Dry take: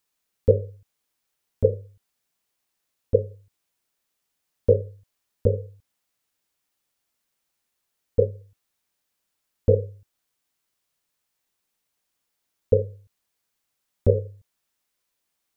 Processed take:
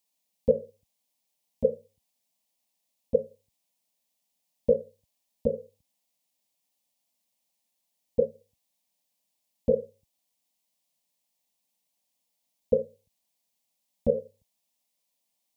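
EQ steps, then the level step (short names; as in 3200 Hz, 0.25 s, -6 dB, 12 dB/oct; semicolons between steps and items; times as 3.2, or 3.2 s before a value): HPF 57 Hz; fixed phaser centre 380 Hz, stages 6; 0.0 dB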